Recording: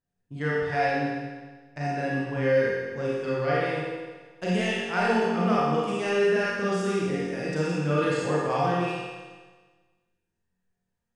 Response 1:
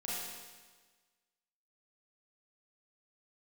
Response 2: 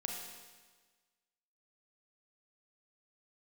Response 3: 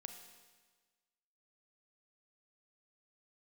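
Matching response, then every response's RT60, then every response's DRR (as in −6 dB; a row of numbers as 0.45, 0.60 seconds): 1; 1.4, 1.4, 1.4 seconds; −8.0, 0.0, 5.5 decibels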